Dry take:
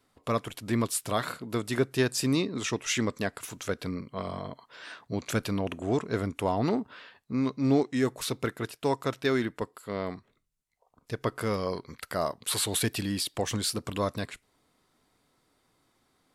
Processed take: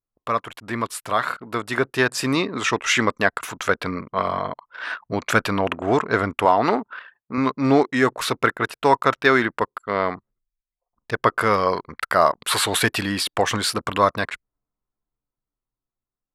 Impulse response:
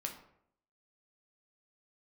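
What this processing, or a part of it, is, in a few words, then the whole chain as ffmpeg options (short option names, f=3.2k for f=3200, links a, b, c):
voice memo with heavy noise removal: -filter_complex "[0:a]asettb=1/sr,asplit=3[a][b][c];[a]atrim=end=6.454[d];[b]atrim=start=6.45:end=7.38,asetpts=PTS-STARTPTS,afade=t=in:d=0.004:c=qsin,afade=t=out:st=0.926:d=0.004:c=qsin,highpass=f=240:p=1[e];[c]atrim=start=7.376[f];[d][e]acrossfade=d=0.004:c1=hsin:c2=qsin[g];[g][f]acrossfade=d=0.004:c1=qsin:c2=hsin,anlmdn=0.0398,dynaudnorm=f=460:g=9:m=7.5dB,equalizer=f=1.3k:t=o:w=2.5:g=14.5,volume=-4.5dB"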